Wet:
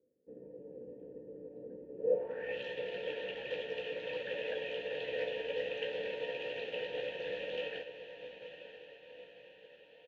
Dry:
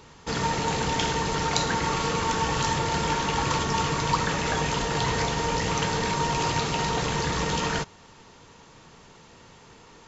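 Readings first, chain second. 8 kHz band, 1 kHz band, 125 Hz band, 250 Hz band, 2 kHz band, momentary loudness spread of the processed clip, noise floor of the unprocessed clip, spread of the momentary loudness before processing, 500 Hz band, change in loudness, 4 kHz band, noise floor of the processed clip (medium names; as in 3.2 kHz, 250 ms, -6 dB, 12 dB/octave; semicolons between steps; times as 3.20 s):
no reading, -29.0 dB, -31.0 dB, -22.0 dB, -13.0 dB, 16 LU, -51 dBFS, 1 LU, -5.5 dB, -13.5 dB, -16.0 dB, -60 dBFS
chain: graphic EQ with 31 bands 500 Hz +4 dB, 1.25 kHz -10 dB, 2 kHz -6 dB, 5 kHz -5 dB; low-pass sweep 290 Hz -> 3.2 kHz, 1.94–2.58 s; vowel filter e; doubling 16 ms -7 dB; echo that smears into a reverb 931 ms, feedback 65%, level -7.5 dB; upward expansion 1.5:1, over -48 dBFS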